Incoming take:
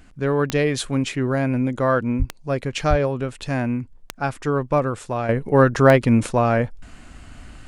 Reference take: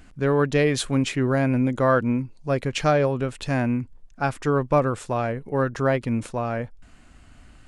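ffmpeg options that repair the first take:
ffmpeg -i in.wav -filter_complex "[0:a]adeclick=threshold=4,asplit=3[link_01][link_02][link_03];[link_01]afade=type=out:start_time=2.18:duration=0.02[link_04];[link_02]highpass=frequency=140:width=0.5412,highpass=frequency=140:width=1.3066,afade=type=in:start_time=2.18:duration=0.02,afade=type=out:start_time=2.3:duration=0.02[link_05];[link_03]afade=type=in:start_time=2.3:duration=0.02[link_06];[link_04][link_05][link_06]amix=inputs=3:normalize=0,asplit=3[link_07][link_08][link_09];[link_07]afade=type=out:start_time=2.89:duration=0.02[link_10];[link_08]highpass=frequency=140:width=0.5412,highpass=frequency=140:width=1.3066,afade=type=in:start_time=2.89:duration=0.02,afade=type=out:start_time=3.01:duration=0.02[link_11];[link_09]afade=type=in:start_time=3.01:duration=0.02[link_12];[link_10][link_11][link_12]amix=inputs=3:normalize=0,asetnsamples=nb_out_samples=441:pad=0,asendcmd='5.29 volume volume -8.5dB',volume=0dB" out.wav

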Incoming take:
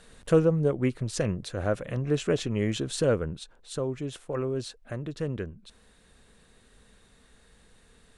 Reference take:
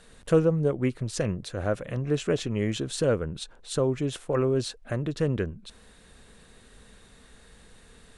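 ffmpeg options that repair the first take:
ffmpeg -i in.wav -af "asetnsamples=nb_out_samples=441:pad=0,asendcmd='3.35 volume volume 5.5dB',volume=0dB" out.wav

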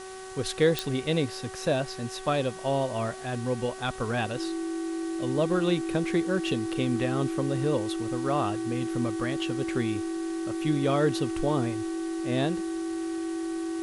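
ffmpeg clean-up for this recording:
ffmpeg -i in.wav -af "adeclick=threshold=4,bandreject=frequency=377.6:width_type=h:width=4,bandreject=frequency=755.2:width_type=h:width=4,bandreject=frequency=1132.8:width_type=h:width=4,bandreject=frequency=1510.4:width_type=h:width=4,bandreject=frequency=1888:width_type=h:width=4,bandreject=frequency=330:width=30,afwtdn=0.005" out.wav

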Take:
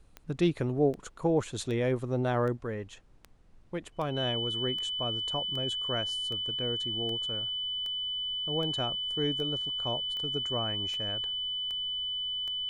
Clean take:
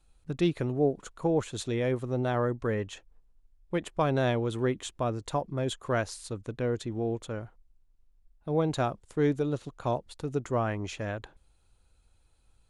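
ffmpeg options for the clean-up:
ffmpeg -i in.wav -af "adeclick=threshold=4,bandreject=frequency=3000:width=30,agate=range=-21dB:threshold=-44dB,asetnsamples=nb_out_samples=441:pad=0,asendcmd='2.57 volume volume 6dB',volume=0dB" out.wav

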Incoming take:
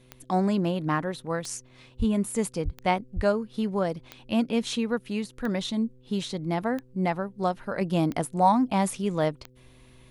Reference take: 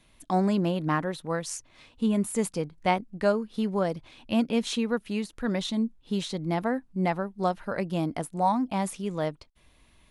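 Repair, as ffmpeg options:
ffmpeg -i in.wav -filter_complex "[0:a]adeclick=threshold=4,bandreject=frequency=126.9:width_type=h:width=4,bandreject=frequency=253.8:width_type=h:width=4,bandreject=frequency=380.7:width_type=h:width=4,bandreject=frequency=507.6:width_type=h:width=4,asplit=3[link_01][link_02][link_03];[link_01]afade=type=out:start_time=1.98:duration=0.02[link_04];[link_02]highpass=frequency=140:width=0.5412,highpass=frequency=140:width=1.3066,afade=type=in:start_time=1.98:duration=0.02,afade=type=out:start_time=2.1:duration=0.02[link_05];[link_03]afade=type=in:start_time=2.1:duration=0.02[link_06];[link_04][link_05][link_06]amix=inputs=3:normalize=0,asplit=3[link_07][link_08][link_09];[link_07]afade=type=out:start_time=2.64:duration=0.02[link_10];[link_08]highpass=frequency=140:width=0.5412,highpass=frequency=140:width=1.3066,afade=type=in:start_time=2.64:duration=0.02,afade=type=out:start_time=2.76:duration=0.02[link_11];[link_09]afade=type=in:start_time=2.76:duration=0.02[link_12];[link_10][link_11][link_12]amix=inputs=3:normalize=0,asplit=3[link_13][link_14][link_15];[link_13]afade=type=out:start_time=3.15:duration=0.02[link_16];[link_14]highpass=frequency=140:width=0.5412,highpass=frequency=140:width=1.3066,afade=type=in:start_time=3.15:duration=0.02,afade=type=out:start_time=3.27:duration=0.02[link_17];[link_15]afade=type=in:start_time=3.27:duration=0.02[link_18];[link_16][link_17][link_18]amix=inputs=3:normalize=0,asetnsamples=nb_out_samples=441:pad=0,asendcmd='7.81 volume volume -4dB',volume=0dB" out.wav

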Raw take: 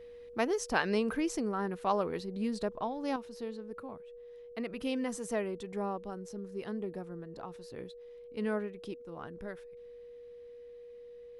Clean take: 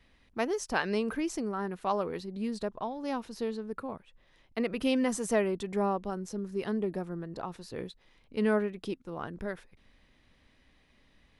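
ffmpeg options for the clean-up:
ffmpeg -i in.wav -af "bandreject=frequency=480:width=30,asetnsamples=nb_out_samples=441:pad=0,asendcmd='3.16 volume volume 6.5dB',volume=0dB" out.wav

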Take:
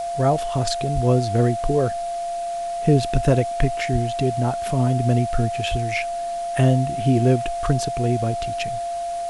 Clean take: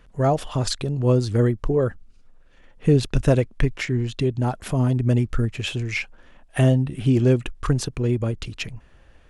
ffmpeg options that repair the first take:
ffmpeg -i in.wav -filter_complex "[0:a]bandreject=frequency=690:width=30,asplit=3[link_01][link_02][link_03];[link_01]afade=type=out:start_time=0.94:duration=0.02[link_04];[link_02]highpass=frequency=140:width=0.5412,highpass=frequency=140:width=1.3066,afade=type=in:start_time=0.94:duration=0.02,afade=type=out:start_time=1.06:duration=0.02[link_05];[link_03]afade=type=in:start_time=1.06:duration=0.02[link_06];[link_04][link_05][link_06]amix=inputs=3:normalize=0,asplit=3[link_07][link_08][link_09];[link_07]afade=type=out:start_time=3.92:duration=0.02[link_10];[link_08]highpass=frequency=140:width=0.5412,highpass=frequency=140:width=1.3066,afade=type=in:start_time=3.92:duration=0.02,afade=type=out:start_time=4.04:duration=0.02[link_11];[link_09]afade=type=in:start_time=4.04:duration=0.02[link_12];[link_10][link_11][link_12]amix=inputs=3:normalize=0,asplit=3[link_13][link_14][link_15];[link_13]afade=type=out:start_time=5.7:duration=0.02[link_16];[link_14]highpass=frequency=140:width=0.5412,highpass=frequency=140:width=1.3066,afade=type=in:start_time=5.7:duration=0.02,afade=type=out:start_time=5.82:duration=0.02[link_17];[link_15]afade=type=in:start_time=5.82:duration=0.02[link_18];[link_16][link_17][link_18]amix=inputs=3:normalize=0,afwtdn=0.0079" out.wav

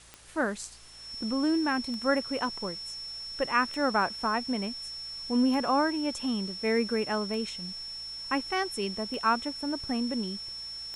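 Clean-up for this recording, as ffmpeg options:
ffmpeg -i in.wav -af "adeclick=threshold=4,bandreject=frequency=56.6:width_type=h:width=4,bandreject=frequency=113.2:width_type=h:width=4,bandreject=frequency=169.8:width_type=h:width=4,bandreject=frequency=5400:width=30,afwtdn=0.0025" out.wav

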